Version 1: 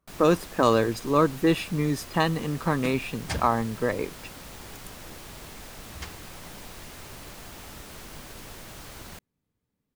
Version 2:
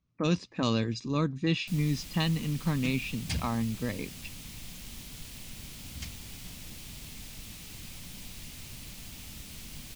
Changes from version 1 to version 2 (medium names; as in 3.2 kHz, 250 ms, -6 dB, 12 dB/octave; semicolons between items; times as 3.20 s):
speech: add steep low-pass 6.4 kHz; first sound: entry +1.60 s; master: add high-order bell 770 Hz -12.5 dB 2.7 oct